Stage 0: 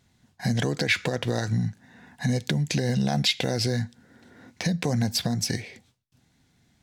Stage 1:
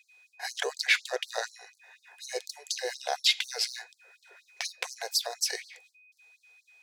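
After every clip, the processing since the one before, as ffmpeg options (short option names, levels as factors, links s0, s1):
-af "aeval=exprs='val(0)+0.00158*sin(2*PI*2500*n/s)':c=same,afftfilt=real='re*gte(b*sr/1024,360*pow(4100/360,0.5+0.5*sin(2*PI*4.1*pts/sr)))':imag='im*gte(b*sr/1024,360*pow(4100/360,0.5+0.5*sin(2*PI*4.1*pts/sr)))':win_size=1024:overlap=0.75"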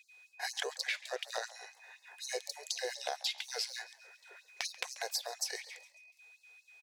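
-filter_complex "[0:a]acompressor=threshold=0.0224:ratio=10,asplit=5[s0][s1][s2][s3][s4];[s1]adelay=137,afreqshift=65,volume=0.112[s5];[s2]adelay=274,afreqshift=130,volume=0.0575[s6];[s3]adelay=411,afreqshift=195,volume=0.0292[s7];[s4]adelay=548,afreqshift=260,volume=0.015[s8];[s0][s5][s6][s7][s8]amix=inputs=5:normalize=0"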